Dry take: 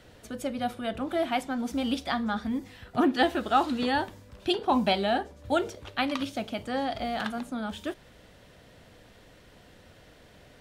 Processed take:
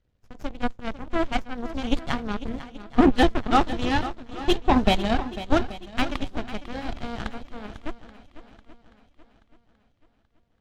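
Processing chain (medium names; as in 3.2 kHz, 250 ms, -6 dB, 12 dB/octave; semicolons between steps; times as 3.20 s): knee-point frequency compression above 3.5 kHz 1.5:1; peaking EQ 5.9 kHz +12 dB 1.7 oct; Chebyshev shaper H 5 -12 dB, 7 -10 dB, 8 -22 dB, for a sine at -9 dBFS; in parallel at -11.5 dB: bit crusher 6-bit; on the sum: RIAA curve playback; on a send: shuffle delay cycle 830 ms, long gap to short 1.5:1, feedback 36%, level -14 dB; on the sum: trim -2 dB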